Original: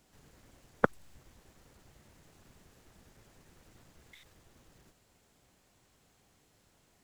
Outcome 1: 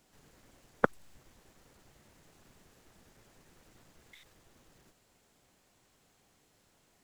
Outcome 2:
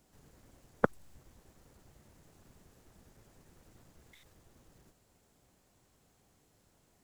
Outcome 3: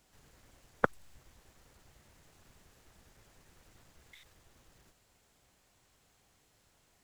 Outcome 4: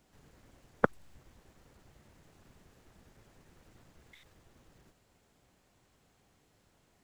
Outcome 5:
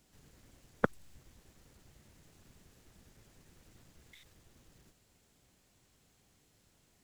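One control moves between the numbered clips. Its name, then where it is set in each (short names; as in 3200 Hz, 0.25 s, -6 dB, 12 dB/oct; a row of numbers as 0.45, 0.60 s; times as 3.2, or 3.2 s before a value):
bell, frequency: 65, 2700, 230, 14000, 890 Hz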